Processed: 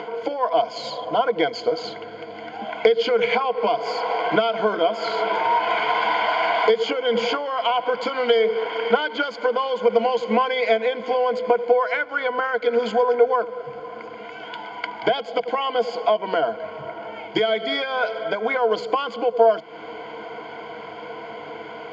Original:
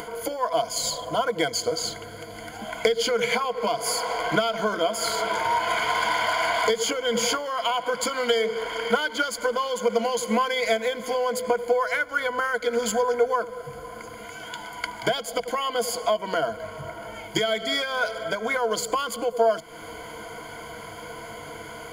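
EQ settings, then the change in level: air absorption 85 m; speaker cabinet 260–4900 Hz, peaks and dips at 420 Hz +4 dB, 810 Hz +8 dB, 2600 Hz +7 dB; low shelf 360 Hz +8 dB; 0.0 dB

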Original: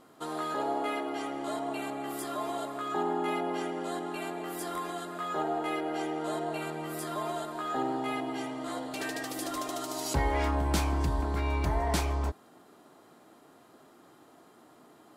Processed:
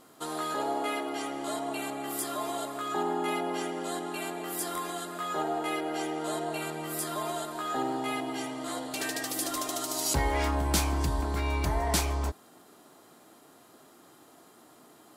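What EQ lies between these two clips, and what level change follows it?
high shelf 3900 Hz +9.5 dB; 0.0 dB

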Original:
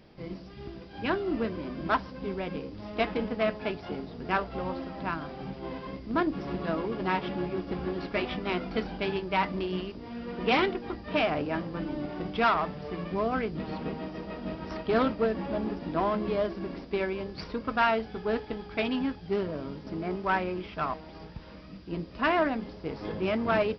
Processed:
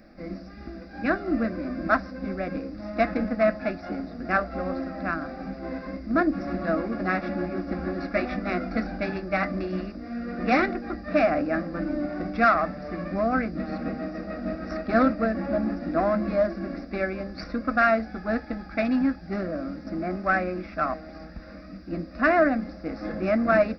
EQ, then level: fixed phaser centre 630 Hz, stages 8; +7.0 dB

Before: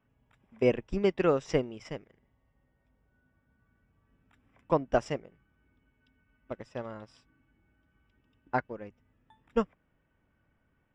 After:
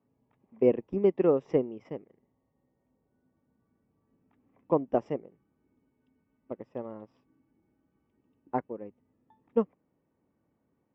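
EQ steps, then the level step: speaker cabinet 320–6800 Hz, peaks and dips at 630 Hz -4 dB, 1500 Hz -10 dB, 4200 Hz -6 dB; tilt -4 dB/oct; high shelf 2500 Hz -10.5 dB; 0.0 dB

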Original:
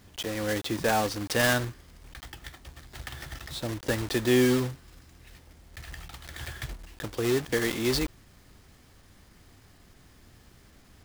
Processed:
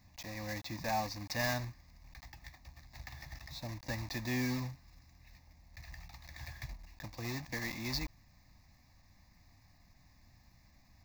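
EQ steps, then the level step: fixed phaser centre 2100 Hz, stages 8; -6.5 dB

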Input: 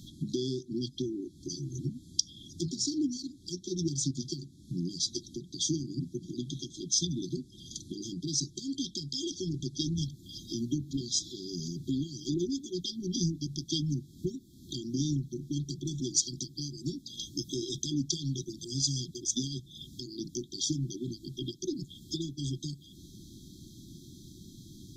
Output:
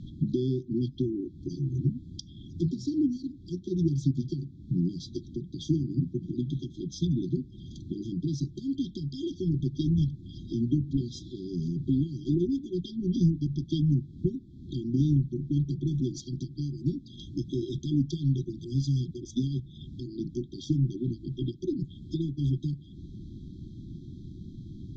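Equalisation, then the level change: LPF 2300 Hz 12 dB/oct; low shelf 240 Hz +11.5 dB; 0.0 dB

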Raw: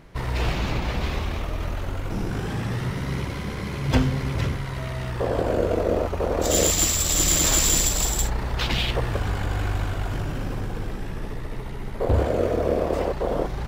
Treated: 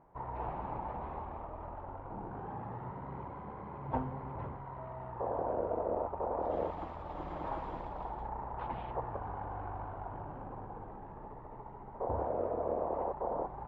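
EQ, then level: band-pass 890 Hz, Q 4.2; air absorption 270 m; tilt -4 dB/oct; -1.0 dB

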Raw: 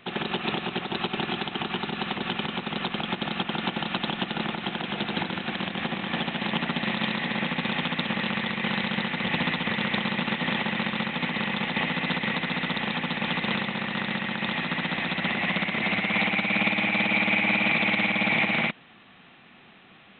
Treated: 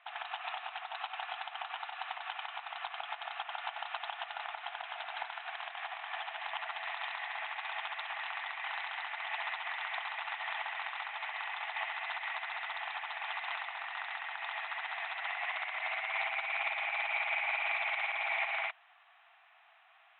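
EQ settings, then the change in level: brick-wall FIR high-pass 630 Hz; air absorption 390 m; -5.0 dB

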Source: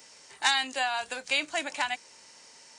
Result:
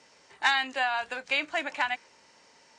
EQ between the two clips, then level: dynamic EQ 1800 Hz, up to +5 dB, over -41 dBFS, Q 0.74; LPF 8100 Hz 12 dB/oct; high shelf 3800 Hz -12 dB; 0.0 dB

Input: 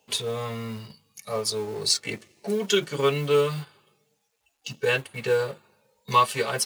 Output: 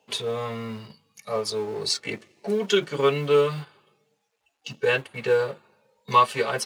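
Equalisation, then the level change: HPF 160 Hz 6 dB/oct; LPF 3000 Hz 6 dB/oct; +2.5 dB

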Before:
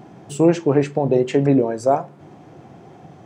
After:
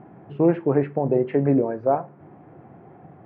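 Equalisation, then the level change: inverse Chebyshev low-pass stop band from 8300 Hz, stop band 70 dB; -3.5 dB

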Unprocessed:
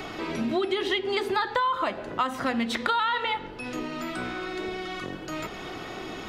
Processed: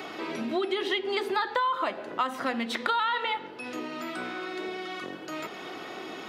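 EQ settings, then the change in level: HPF 240 Hz 12 dB/oct; bell 7100 Hz -2.5 dB; -1.5 dB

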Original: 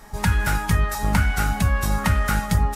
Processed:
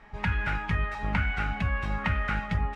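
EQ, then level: synth low-pass 2500 Hz, resonance Q 2.2; -8.5 dB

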